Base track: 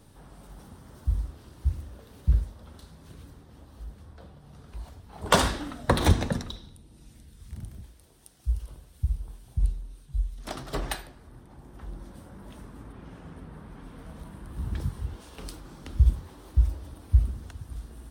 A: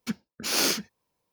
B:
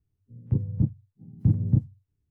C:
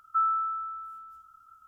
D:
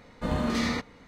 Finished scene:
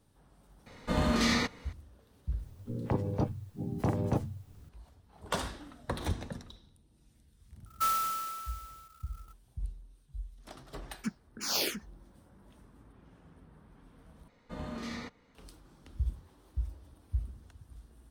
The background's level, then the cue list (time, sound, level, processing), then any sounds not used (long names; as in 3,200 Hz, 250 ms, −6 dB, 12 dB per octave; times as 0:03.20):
base track −13 dB
0:00.66: mix in D −1 dB + high-shelf EQ 2,200 Hz +5.5 dB
0:02.39: mix in B −6.5 dB + every bin compressed towards the loudest bin 4 to 1
0:07.66: mix in C −3.5 dB + converter with an unsteady clock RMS 0.048 ms
0:10.97: mix in A −4 dB + frequency shifter mixed with the dry sound −2.8 Hz
0:14.28: overwrite with D −12.5 dB